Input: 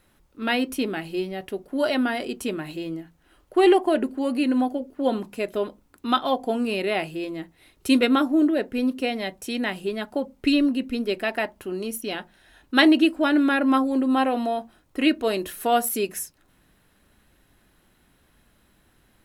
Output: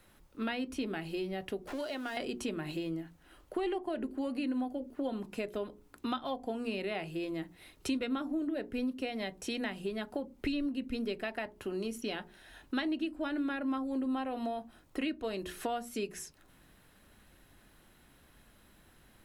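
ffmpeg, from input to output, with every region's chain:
-filter_complex "[0:a]asettb=1/sr,asplit=3[a][b][c];[a]atrim=end=1.674[d];[b]atrim=start=1.67:end=2.17,asetpts=PTS-STARTPTS,afade=t=in:d=0.004:c=qsin,afade=t=out:st=0.496:d=0.004:c=qsin,aeval=exprs='val(0)+0.5*0.0188*sgn(val(0))':c=same,acrossover=split=420|3600[e][f][g];[e]acompressor=threshold=-35dB:ratio=4[h];[f]acompressor=threshold=-37dB:ratio=4[i];[g]acompressor=threshold=-49dB:ratio=4[j];[h][i][j]amix=inputs=3:normalize=0,equalizer=f=140:t=o:w=1.6:g=-12.5[k];[c]atrim=start=2.166[l];[d][k]acrossfade=d=0.004:c1=hsin:c2=qsin[m];[m][l]acrossfade=d=0.004:c1=qsin:c2=hsin,acrossover=split=8100[n][o];[o]acompressor=threshold=-57dB:ratio=4:attack=1:release=60[p];[n][p]amix=inputs=2:normalize=0,bandreject=f=60:t=h:w=6,bandreject=f=120:t=h:w=6,bandreject=f=180:t=h:w=6,bandreject=f=240:t=h:w=6,bandreject=f=300:t=h:w=6,bandreject=f=360:t=h:w=6,bandreject=f=420:t=h:w=6,acrossover=split=130[q][r];[r]acompressor=threshold=-34dB:ratio=6[s];[q][s]amix=inputs=2:normalize=0"

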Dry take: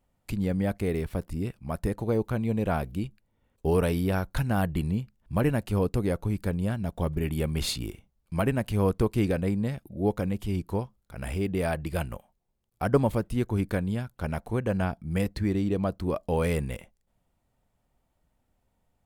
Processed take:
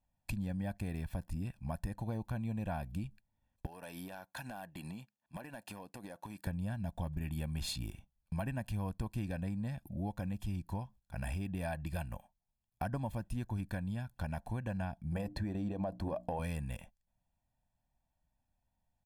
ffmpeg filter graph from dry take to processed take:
-filter_complex "[0:a]asettb=1/sr,asplit=3[a][b][c];[a]atrim=end=3.664[d];[b]atrim=start=3.66:end=6.47,asetpts=PTS-STARTPTS,afade=t=in:d=0.004:c=qsin,afade=t=out:st=2.806:d=0.004:c=qsin,highpass=340,acompressor=threshold=-38dB:ratio=20:attack=3.2:release=140:knee=1:detection=peak,volume=34.5dB,asoftclip=hard,volume=-34.5dB[e];[c]atrim=start=6.466[f];[d][e]acrossfade=d=0.004:c1=hsin:c2=qsin[g];[g][f]acrossfade=d=0.004:c1=qsin:c2=hsin,asettb=1/sr,asplit=3[h][i][j];[h]atrim=end=15.124[k];[i]atrim=start=15.12:end=16.39,asetpts=PTS-STARTPTS,afade=t=in:d=0.004:c=qsin,afade=t=out:st=1.266:d=0.004:c=qsin,equalizer=f=540:t=o:w=2.1:g=14,bandreject=f=60:t=h:w=6,bandreject=f=120:t=h:w=6,bandreject=f=180:t=h:w=6,bandreject=f=240:t=h:w=6,bandreject=f=300:t=h:w=6,acompressor=threshold=-18dB:ratio=6:attack=3.2:release=140:knee=1:detection=peak[l];[j]atrim=start=16.386[m];[k][l]acrossfade=d=0.004:c1=hsin:c2=qsin[n];[n][m]acrossfade=d=0.004:c1=qsin:c2=hsin,agate=range=-10dB:threshold=-48dB:ratio=16:detection=peak,aecho=1:1:1.2:0.76,acompressor=threshold=-33dB:ratio=4,volume=-3dB"

